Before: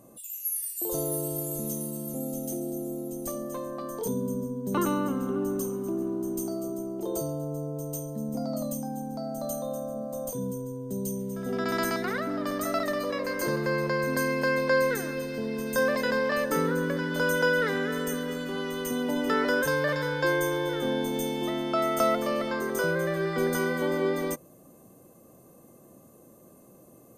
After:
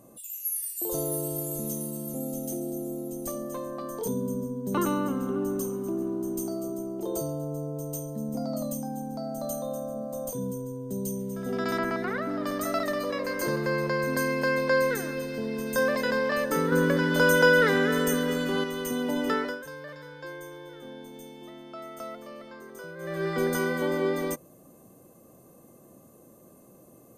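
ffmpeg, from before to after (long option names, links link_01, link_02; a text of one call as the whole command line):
ffmpeg -i in.wav -filter_complex "[0:a]asettb=1/sr,asplit=3[link_01][link_02][link_03];[link_01]atrim=end=11.784[link_04];[link_02]atrim=start=11.78:end=12.43,asetpts=PTS-STARTPTS,afade=type=in:duration=0.004:curve=qsin,afade=type=out:start_time=0.646:duration=0.004:curve=qsin,acrossover=split=2600[link_05][link_06];[link_06]acompressor=threshold=-53dB:ratio=4:attack=1:release=60[link_07];[link_05][link_07]amix=inputs=2:normalize=0[link_08];[link_03]atrim=start=12.426[link_09];[link_04][link_08]acrossfade=duration=0.004:curve1=hsin:curve2=qsin[link_10];[link_10][link_09]acrossfade=duration=0.004:curve1=qsin:curve2=hsin,asettb=1/sr,asplit=3[link_11][link_12][link_13];[link_11]atrim=end=16.724[link_14];[link_12]atrim=start=16.72:end=18.64,asetpts=PTS-STARTPTS,afade=type=in:duration=0.004:curve=qsin,afade=type=out:start_time=1.916:duration=0.004:curve=qsin,acontrast=31[link_15];[link_13]atrim=start=18.636[link_16];[link_14][link_15]acrossfade=duration=0.004:curve1=hsin:curve2=qsin[link_17];[link_17][link_16]acrossfade=duration=0.004:curve1=qsin:curve2=hsin,asplit=3[link_18][link_19][link_20];[link_18]atrim=end=19.59,asetpts=PTS-STARTPTS,afade=type=out:start_time=19.29:duration=0.3:silence=0.177828[link_21];[link_19]atrim=start=19.59:end=22.97,asetpts=PTS-STARTPTS,volume=-15dB[link_22];[link_20]atrim=start=22.97,asetpts=PTS-STARTPTS,afade=type=in:duration=0.3:silence=0.177828[link_23];[link_21][link_22][link_23]concat=n=3:v=0:a=1" out.wav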